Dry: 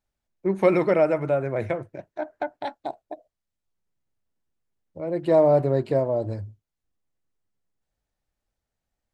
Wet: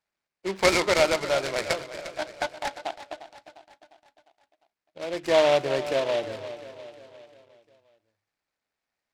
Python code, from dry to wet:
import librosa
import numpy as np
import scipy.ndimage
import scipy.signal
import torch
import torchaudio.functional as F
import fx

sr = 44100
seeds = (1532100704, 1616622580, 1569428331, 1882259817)

p1 = fx.highpass(x, sr, hz=1300.0, slope=6)
p2 = fx.high_shelf_res(p1, sr, hz=3200.0, db=-9.5, q=3.0)
p3 = p2 + fx.echo_feedback(p2, sr, ms=352, feedback_pct=51, wet_db=-13.0, dry=0)
p4 = fx.noise_mod_delay(p3, sr, seeds[0], noise_hz=2300.0, depth_ms=0.067)
y = p4 * 10.0 ** (5.0 / 20.0)